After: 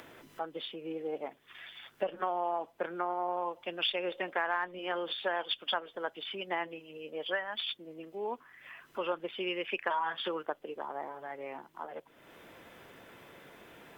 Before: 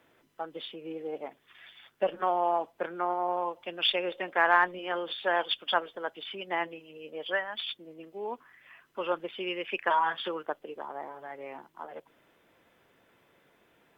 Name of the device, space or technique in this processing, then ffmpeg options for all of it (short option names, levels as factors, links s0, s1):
upward and downward compression: -af "acompressor=mode=upward:threshold=0.00794:ratio=2.5,acompressor=threshold=0.0355:ratio=4"